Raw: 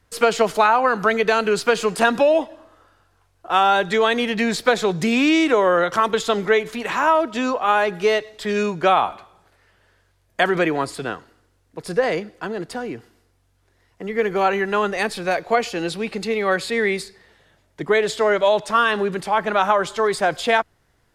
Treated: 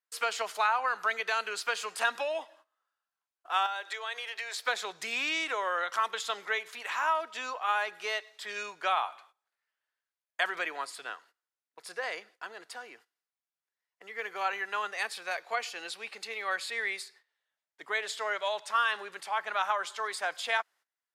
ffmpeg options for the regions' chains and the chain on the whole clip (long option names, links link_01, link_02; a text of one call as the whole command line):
ffmpeg -i in.wav -filter_complex "[0:a]asettb=1/sr,asplit=3[link_01][link_02][link_03];[link_01]atrim=end=3.664[link_04];[link_02]atrim=start=3.66:end=4.65,asetpts=PTS-STARTPTS,afade=type=in:duration=0.004:curve=qsin,afade=type=out:start_time=0.986:duration=0.004:curve=qsin,highpass=frequency=390:width=0.5412,highpass=frequency=390:width=1.3066,acompressor=threshold=-24dB:ratio=2.5:attack=3.2:release=140:knee=1:detection=peak[link_05];[link_03]atrim=start=4.646[link_06];[link_04][link_05]acrossfade=duration=0.004:curve1=hsin:curve2=qsin[link_07];[link_07][link_06]acrossfade=duration=0.004:curve1=qsin:curve2=hsin,highpass=1000,agate=range=-18dB:threshold=-49dB:ratio=16:detection=peak,volume=-8dB" out.wav